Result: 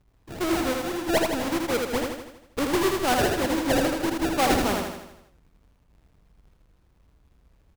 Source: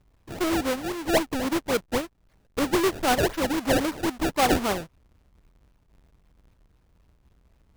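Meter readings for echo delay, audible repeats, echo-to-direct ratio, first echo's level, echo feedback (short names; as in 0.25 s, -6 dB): 80 ms, 6, -2.0 dB, -3.5 dB, 54%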